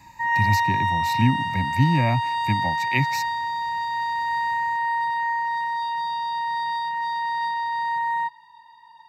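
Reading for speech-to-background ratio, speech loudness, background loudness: -1.0 dB, -25.5 LUFS, -24.5 LUFS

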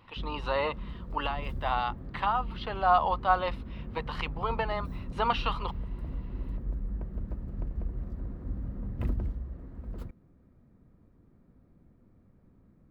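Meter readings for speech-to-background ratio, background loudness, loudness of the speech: 8.0 dB, -39.0 LUFS, -31.0 LUFS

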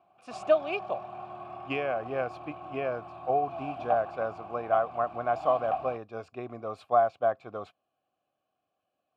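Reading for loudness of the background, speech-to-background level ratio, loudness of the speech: -39.5 LUFS, 9.0 dB, -30.5 LUFS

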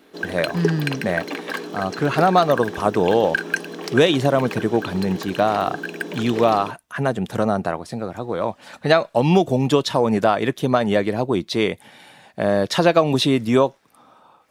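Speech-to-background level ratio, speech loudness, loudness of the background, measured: 8.5 dB, -20.5 LUFS, -29.0 LUFS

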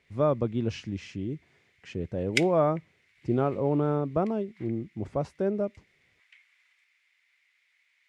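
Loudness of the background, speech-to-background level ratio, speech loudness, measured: -31.5 LUFS, 2.0 dB, -29.5 LUFS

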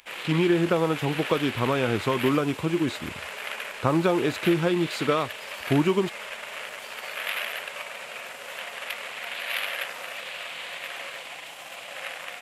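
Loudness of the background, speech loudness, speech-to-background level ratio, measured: -34.0 LUFS, -25.0 LUFS, 9.0 dB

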